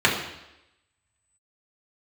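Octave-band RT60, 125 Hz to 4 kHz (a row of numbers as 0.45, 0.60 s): 0.80, 0.90, 0.90, 0.90, 0.90, 0.90 s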